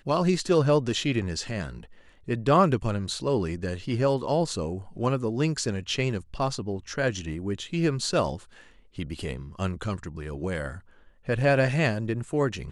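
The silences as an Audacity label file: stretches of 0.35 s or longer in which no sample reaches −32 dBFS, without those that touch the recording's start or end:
1.760000	2.280000	silence
8.360000	8.990000	silence
10.760000	11.280000	silence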